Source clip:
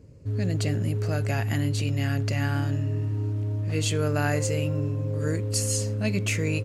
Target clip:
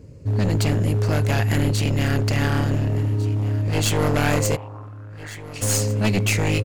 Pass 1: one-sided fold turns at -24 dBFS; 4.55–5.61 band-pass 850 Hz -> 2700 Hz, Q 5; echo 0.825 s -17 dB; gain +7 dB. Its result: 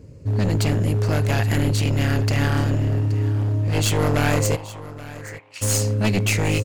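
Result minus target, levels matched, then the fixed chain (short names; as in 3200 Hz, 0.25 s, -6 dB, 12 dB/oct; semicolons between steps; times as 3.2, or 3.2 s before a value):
echo 0.626 s early
one-sided fold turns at -24 dBFS; 4.55–5.61 band-pass 850 Hz -> 2700 Hz, Q 5; echo 1.451 s -17 dB; gain +7 dB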